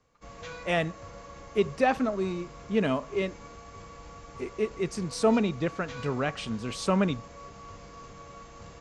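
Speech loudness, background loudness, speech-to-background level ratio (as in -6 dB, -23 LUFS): -29.5 LUFS, -45.5 LUFS, 16.0 dB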